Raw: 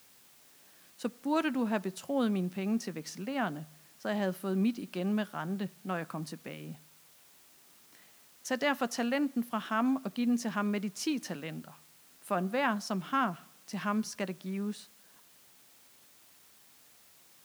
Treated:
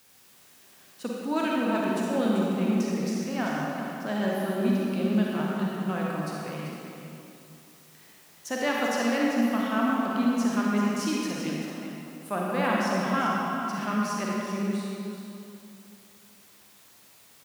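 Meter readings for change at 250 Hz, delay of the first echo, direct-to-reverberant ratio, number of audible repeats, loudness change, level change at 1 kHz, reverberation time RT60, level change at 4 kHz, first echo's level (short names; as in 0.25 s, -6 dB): +6.0 dB, 0.388 s, -4.5 dB, 1, +5.5 dB, +6.0 dB, 2.7 s, +5.0 dB, -8.5 dB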